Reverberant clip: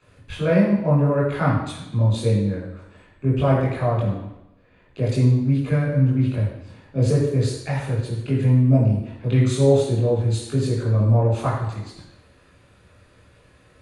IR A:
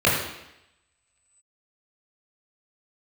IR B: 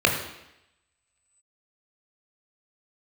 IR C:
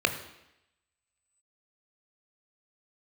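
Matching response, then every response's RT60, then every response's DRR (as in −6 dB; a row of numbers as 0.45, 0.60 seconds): A; 0.85, 0.85, 0.85 seconds; −6.5, 1.5, 7.0 decibels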